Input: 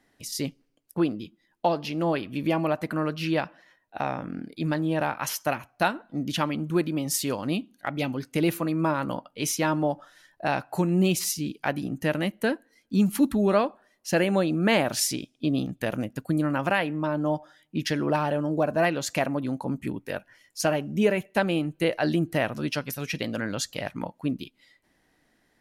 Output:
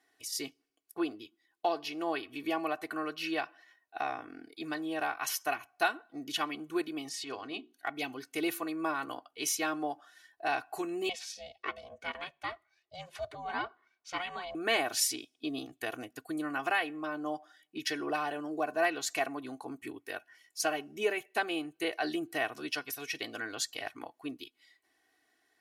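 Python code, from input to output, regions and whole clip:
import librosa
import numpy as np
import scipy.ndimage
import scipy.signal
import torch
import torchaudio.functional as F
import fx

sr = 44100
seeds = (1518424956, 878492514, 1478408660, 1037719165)

y = fx.chain(x, sr, fx.lowpass(hz=4800.0, slope=12),
    fx.hum_notches(base_hz=60, count=7),
    fx.transient(attack_db=-9, sustain_db=-1), at=(7.09, 7.73))
y = fx.chain(y, sr, fx.lowpass(hz=4200.0, slope=12),
    fx.peak_eq(hz=370.0, db=-6.0, octaves=1.5),
    fx.ring_mod(carrier_hz=360.0), at=(11.09, 14.55))
y = fx.highpass(y, sr, hz=730.0, slope=6)
y = y + 0.86 * np.pad(y, (int(2.7 * sr / 1000.0), 0))[:len(y)]
y = F.gain(torch.from_numpy(y), -5.5).numpy()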